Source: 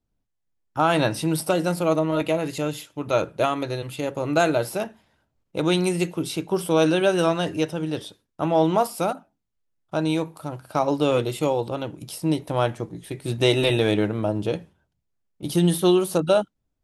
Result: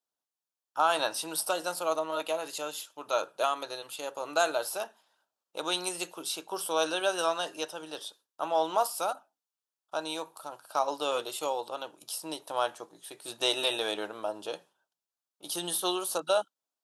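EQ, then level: high-pass 880 Hz 12 dB/octave; peaking EQ 2.1 kHz -14 dB 0.56 oct; 0.0 dB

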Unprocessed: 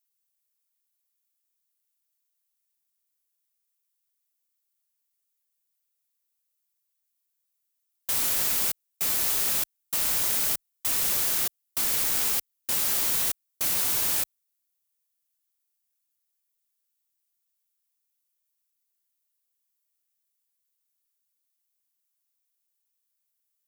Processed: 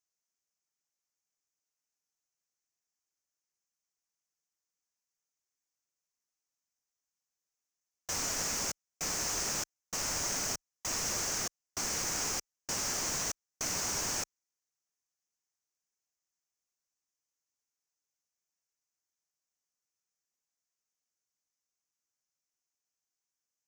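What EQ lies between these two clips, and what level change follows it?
distance through air 200 m; resonant high shelf 4.8 kHz +9.5 dB, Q 3; 0.0 dB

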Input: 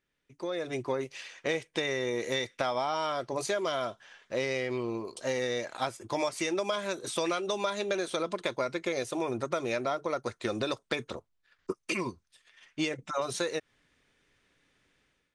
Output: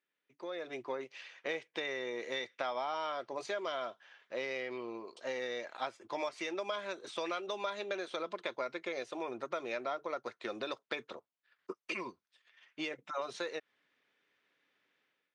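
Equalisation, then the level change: band-pass 180–3900 Hz; bass shelf 270 Hz -11.5 dB; -4.5 dB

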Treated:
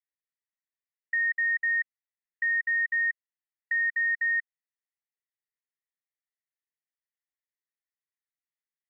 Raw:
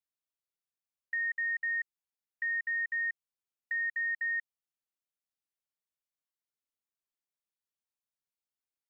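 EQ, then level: resonant low-pass 1.9 kHz, resonance Q 8.2; differentiator; 0.0 dB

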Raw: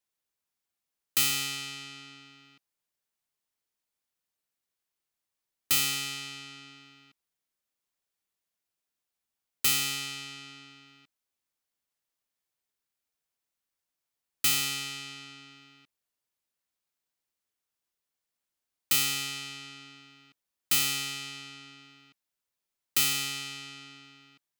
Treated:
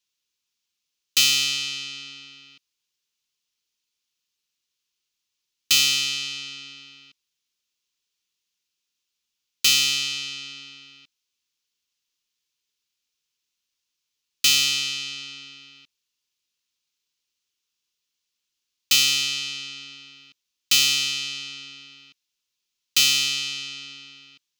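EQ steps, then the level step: Butterworth band-stop 680 Hz, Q 2; high-order bell 4.1 kHz +11.5 dB; 0.0 dB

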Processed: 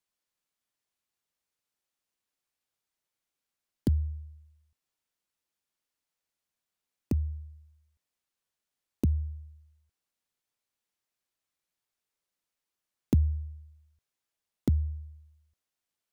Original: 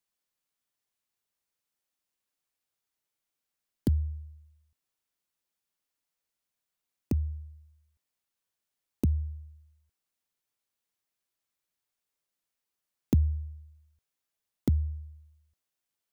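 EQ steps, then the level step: treble shelf 12 kHz -6 dB; 0.0 dB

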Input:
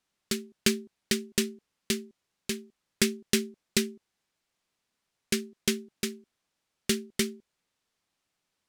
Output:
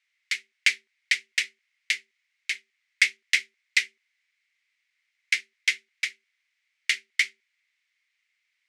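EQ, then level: resonant high-pass 2.1 kHz, resonance Q 7.5; low-pass 6.9 kHz 12 dB/octave; 0.0 dB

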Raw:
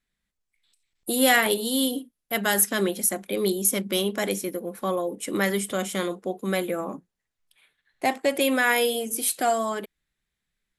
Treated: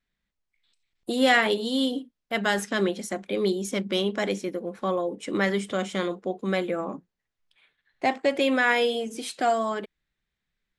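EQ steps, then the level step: Bessel low-pass 4.9 kHz, order 4; 0.0 dB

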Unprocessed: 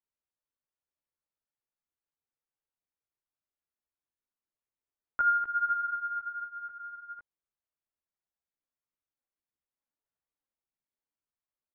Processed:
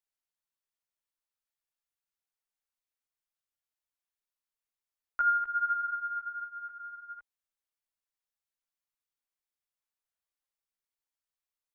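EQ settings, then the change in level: peaking EQ 200 Hz -14 dB 2.8 oct; +1.0 dB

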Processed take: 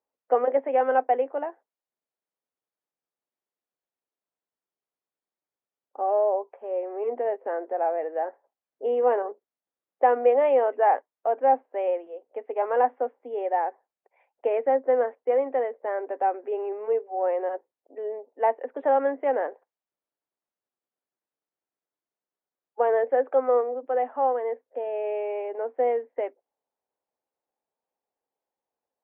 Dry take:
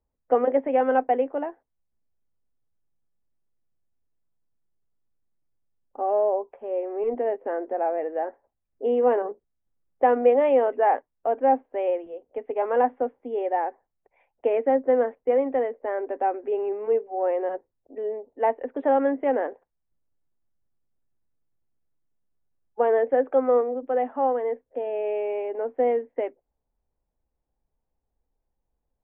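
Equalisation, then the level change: high-pass 480 Hz 12 dB/octave; low-pass 2.3 kHz 6 dB/octave; +1.5 dB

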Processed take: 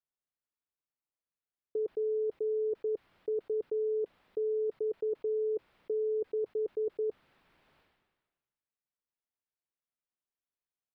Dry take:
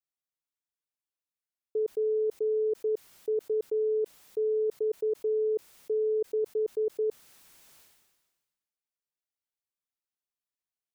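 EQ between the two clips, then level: dynamic bell 440 Hz, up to -3 dB, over -41 dBFS, Q 6.7; distance through air 440 m; 0.0 dB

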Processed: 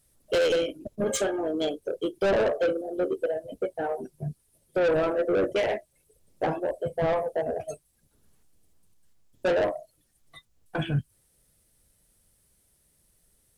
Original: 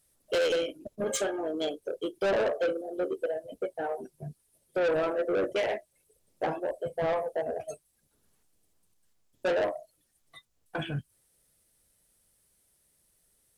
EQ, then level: bass shelf 230 Hz +8 dB; +2.0 dB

